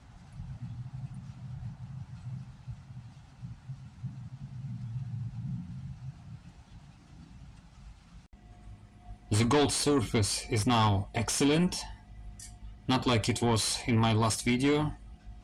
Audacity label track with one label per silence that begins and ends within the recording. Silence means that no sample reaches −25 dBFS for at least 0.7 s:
11.720000	12.890000	silence